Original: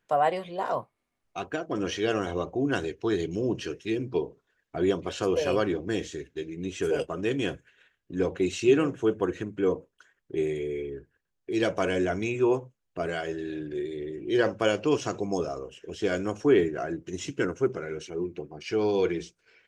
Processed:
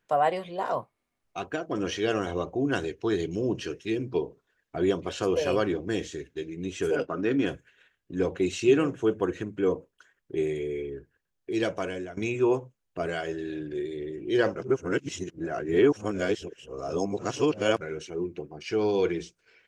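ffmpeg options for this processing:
ffmpeg -i in.wav -filter_complex "[0:a]asplit=3[link_01][link_02][link_03];[link_01]afade=type=out:start_time=6.95:duration=0.02[link_04];[link_02]highpass=110,equalizer=frequency=270:width_type=q:width=4:gain=7,equalizer=frequency=1400:width_type=q:width=4:gain=8,equalizer=frequency=3100:width_type=q:width=4:gain=-8,lowpass=frequency=5300:width=0.5412,lowpass=frequency=5300:width=1.3066,afade=type=in:start_time=6.95:duration=0.02,afade=type=out:start_time=7.45:duration=0.02[link_05];[link_03]afade=type=in:start_time=7.45:duration=0.02[link_06];[link_04][link_05][link_06]amix=inputs=3:normalize=0,asplit=4[link_07][link_08][link_09][link_10];[link_07]atrim=end=12.17,asetpts=PTS-STARTPTS,afade=type=out:start_time=11.5:duration=0.67:silence=0.141254[link_11];[link_08]atrim=start=12.17:end=14.562,asetpts=PTS-STARTPTS,afade=type=in:duration=0.004:curve=hsin:silence=0.141254[link_12];[link_09]atrim=start=14.558:end=17.812,asetpts=PTS-STARTPTS,areverse[link_13];[link_10]atrim=start=17.808[link_14];[link_11][link_12]concat=n=2:v=0:a=1[link_15];[link_15][link_13]acrossfade=duration=0.004:curve1=hsin:curve2=hsin[link_16];[link_16][link_14]acrossfade=duration=0.004:curve1=hsin:curve2=hsin" out.wav

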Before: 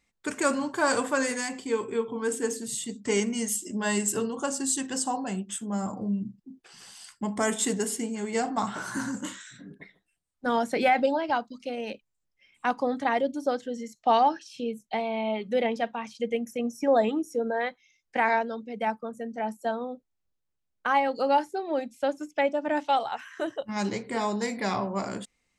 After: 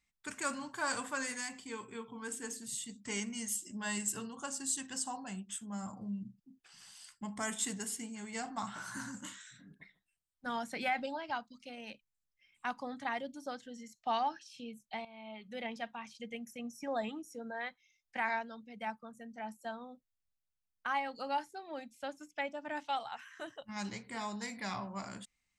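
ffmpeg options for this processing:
ffmpeg -i in.wav -filter_complex "[0:a]asplit=2[link_01][link_02];[link_01]atrim=end=15.05,asetpts=PTS-STARTPTS,afade=type=out:start_time=15.046:duration=0.004:curve=hsin:silence=0.188365[link_03];[link_02]atrim=start=15.05,asetpts=PTS-STARTPTS,afade=type=in:duration=0.68:silence=0.188365[link_04];[link_03][link_04]concat=n=2:v=0:a=1,equalizer=frequency=420:width=0.97:gain=-12.5,volume=-7dB" out.wav

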